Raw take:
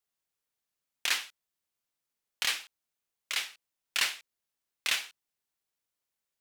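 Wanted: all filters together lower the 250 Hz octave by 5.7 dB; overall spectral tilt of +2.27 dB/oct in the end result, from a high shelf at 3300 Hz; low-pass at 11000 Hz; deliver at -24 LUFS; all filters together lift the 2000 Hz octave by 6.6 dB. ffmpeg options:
-af "lowpass=11k,equalizer=f=250:t=o:g=-8,equalizer=f=2k:t=o:g=6,highshelf=f=3.3k:g=6,volume=2.5dB"

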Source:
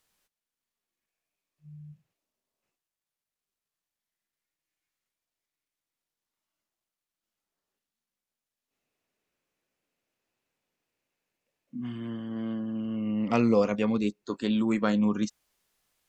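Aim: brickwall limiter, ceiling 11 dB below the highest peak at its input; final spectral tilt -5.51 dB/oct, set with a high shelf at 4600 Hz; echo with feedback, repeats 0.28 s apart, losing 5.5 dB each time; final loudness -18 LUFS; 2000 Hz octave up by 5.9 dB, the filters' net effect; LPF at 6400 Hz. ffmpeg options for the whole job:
-af "lowpass=6.4k,equalizer=f=2k:t=o:g=7,highshelf=f=4.6k:g=4,alimiter=limit=-18dB:level=0:latency=1,aecho=1:1:280|560|840|1120|1400|1680|1960:0.531|0.281|0.149|0.079|0.0419|0.0222|0.0118,volume=11dB"

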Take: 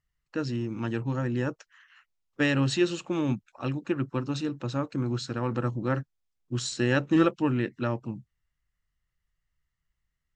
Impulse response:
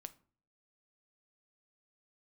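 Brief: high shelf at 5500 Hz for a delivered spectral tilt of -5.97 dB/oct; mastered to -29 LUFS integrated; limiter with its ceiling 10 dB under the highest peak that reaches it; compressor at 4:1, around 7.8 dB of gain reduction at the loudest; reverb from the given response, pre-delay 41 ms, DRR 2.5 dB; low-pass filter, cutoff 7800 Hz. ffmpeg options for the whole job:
-filter_complex "[0:a]lowpass=7.8k,highshelf=f=5.5k:g=-5,acompressor=threshold=-27dB:ratio=4,alimiter=level_in=2.5dB:limit=-24dB:level=0:latency=1,volume=-2.5dB,asplit=2[a][b];[1:a]atrim=start_sample=2205,adelay=41[c];[b][c]afir=irnorm=-1:irlink=0,volume=3dB[d];[a][d]amix=inputs=2:normalize=0,volume=6dB"

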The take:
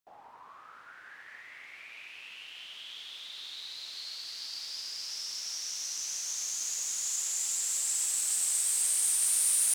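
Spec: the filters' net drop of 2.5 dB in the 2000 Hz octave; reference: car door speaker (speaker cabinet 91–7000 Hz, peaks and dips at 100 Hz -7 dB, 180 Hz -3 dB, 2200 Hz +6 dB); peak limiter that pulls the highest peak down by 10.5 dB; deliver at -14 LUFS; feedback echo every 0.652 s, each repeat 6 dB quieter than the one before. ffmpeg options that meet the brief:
-af "equalizer=f=2k:t=o:g=-7,alimiter=level_in=0.5dB:limit=-24dB:level=0:latency=1,volume=-0.5dB,highpass=91,equalizer=f=100:t=q:w=4:g=-7,equalizer=f=180:t=q:w=4:g=-3,equalizer=f=2.2k:t=q:w=4:g=6,lowpass=f=7k:w=0.5412,lowpass=f=7k:w=1.3066,aecho=1:1:652|1304|1956|2608|3260|3912:0.501|0.251|0.125|0.0626|0.0313|0.0157,volume=22dB"

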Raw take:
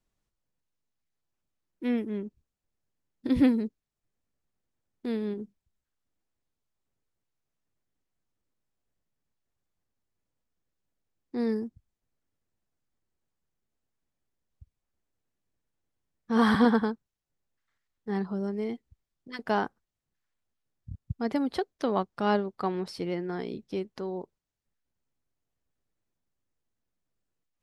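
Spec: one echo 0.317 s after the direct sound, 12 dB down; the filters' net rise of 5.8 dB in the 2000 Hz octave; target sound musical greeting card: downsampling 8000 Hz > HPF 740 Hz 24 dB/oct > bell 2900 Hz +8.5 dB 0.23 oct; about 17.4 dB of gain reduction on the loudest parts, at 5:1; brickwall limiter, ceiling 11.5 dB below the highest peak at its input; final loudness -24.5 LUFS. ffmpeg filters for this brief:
-af "equalizer=f=2k:t=o:g=7.5,acompressor=threshold=-37dB:ratio=5,alimiter=level_in=11.5dB:limit=-24dB:level=0:latency=1,volume=-11.5dB,aecho=1:1:317:0.251,aresample=8000,aresample=44100,highpass=f=740:w=0.5412,highpass=f=740:w=1.3066,equalizer=f=2.9k:t=o:w=0.23:g=8.5,volume=29dB"

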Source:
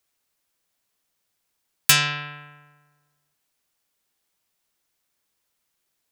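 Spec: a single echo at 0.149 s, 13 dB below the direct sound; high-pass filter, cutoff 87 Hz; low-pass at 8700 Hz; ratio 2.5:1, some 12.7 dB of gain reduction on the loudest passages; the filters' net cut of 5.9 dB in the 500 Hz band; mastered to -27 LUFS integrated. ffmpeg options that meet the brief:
-af "highpass=87,lowpass=8.7k,equalizer=f=500:t=o:g=-7.5,acompressor=threshold=-33dB:ratio=2.5,aecho=1:1:149:0.224,volume=6dB"

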